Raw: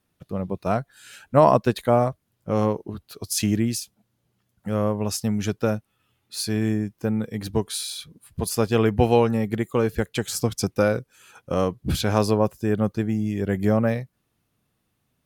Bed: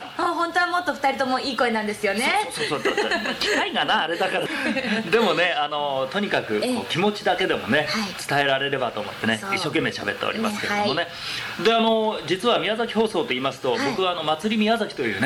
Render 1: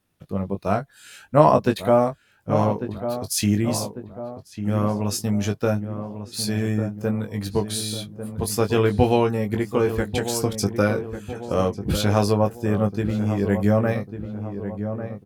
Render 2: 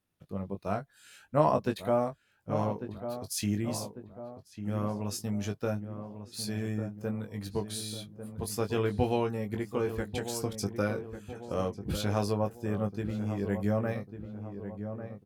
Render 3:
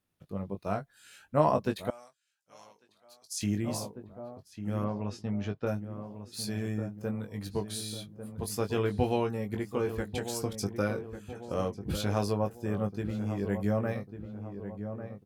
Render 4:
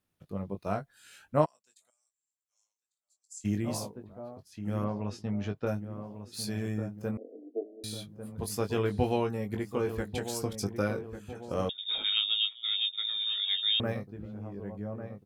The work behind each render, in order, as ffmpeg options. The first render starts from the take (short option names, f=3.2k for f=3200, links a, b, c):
-filter_complex "[0:a]asplit=2[a][b];[b]adelay=20,volume=-6dB[c];[a][c]amix=inputs=2:normalize=0,asplit=2[d][e];[e]adelay=1147,lowpass=f=1.2k:p=1,volume=-9dB,asplit=2[f][g];[g]adelay=1147,lowpass=f=1.2k:p=1,volume=0.52,asplit=2[h][i];[i]adelay=1147,lowpass=f=1.2k:p=1,volume=0.52,asplit=2[j][k];[k]adelay=1147,lowpass=f=1.2k:p=1,volume=0.52,asplit=2[l][m];[m]adelay=1147,lowpass=f=1.2k:p=1,volume=0.52,asplit=2[n][o];[o]adelay=1147,lowpass=f=1.2k:p=1,volume=0.52[p];[d][f][h][j][l][n][p]amix=inputs=7:normalize=0"
-af "volume=-10dB"
-filter_complex "[0:a]asettb=1/sr,asplit=3[a][b][c];[a]atrim=end=1.904[d];[b]atrim=start=1.9:end=3.41,asetpts=PTS-STARTPTS,afade=t=in:d=0.004:c=qsin,afade=t=out:st=1.506:d=0.004:c=qsin,bandpass=f=6.7k:t=q:w=1.3[e];[c]atrim=start=3.406[f];[d][e]acrossfade=d=0.004:c1=hsin:c2=qsin[g];[g][f]acrossfade=d=0.004:c1=qsin:c2=hsin,asettb=1/sr,asplit=3[h][i][j];[h]atrim=end=4.844[k];[i]atrim=start=4.84:end=5.67,asetpts=PTS-STARTPTS,afade=t=in:d=0.004:c=qsin,afade=t=out:st=0.826:d=0.004:c=qsin,lowpass=3.2k[l];[j]atrim=start=5.666[m];[k][l]acrossfade=d=0.004:c1=hsin:c2=qsin[n];[n][m]acrossfade=d=0.004:c1=qsin:c2=hsin"
-filter_complex "[0:a]asplit=3[a][b][c];[a]afade=t=out:st=1.44:d=0.02[d];[b]bandpass=f=7.5k:t=q:w=10,afade=t=in:st=1.44:d=0.02,afade=t=out:st=3.44:d=0.02[e];[c]afade=t=in:st=3.44:d=0.02[f];[d][e][f]amix=inputs=3:normalize=0,asettb=1/sr,asplit=3[g][h][i];[g]atrim=end=7.174[j];[h]atrim=start=7.17:end=7.84,asetpts=PTS-STARTPTS,afade=t=in:d=0.004:c=qsin,afade=t=out:st=0.666:d=0.004:c=qsin,asuperpass=centerf=420:order=20:qfactor=0.91[k];[i]atrim=start=7.836[l];[j][k]acrossfade=d=0.004:c1=hsin:c2=qsin[m];[m][l]acrossfade=d=0.004:c1=qsin:c2=hsin,asettb=1/sr,asplit=3[n][o][p];[n]atrim=end=11.694[q];[o]atrim=start=11.69:end=13.8,asetpts=PTS-STARTPTS,afade=t=in:d=0.004:c=qsin,afade=t=out:st=2.106:d=0.004:c=qsin,lowpass=f=3.2k:t=q:w=0.5098,lowpass=f=3.2k:t=q:w=0.6013,lowpass=f=3.2k:t=q:w=0.9,lowpass=f=3.2k:t=q:w=2.563,afreqshift=-3800[r];[p]atrim=start=13.796[s];[q][r]acrossfade=d=0.004:c1=hsin:c2=qsin[t];[t][s]acrossfade=d=0.004:c1=qsin:c2=hsin"